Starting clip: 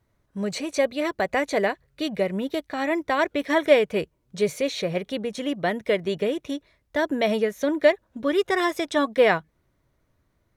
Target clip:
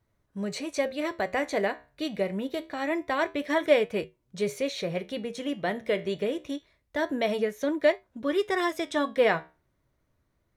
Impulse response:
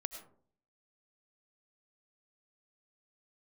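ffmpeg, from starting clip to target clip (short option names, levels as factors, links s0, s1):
-af "flanger=delay=9:depth=7.2:regen=-73:speed=0.25:shape=triangular"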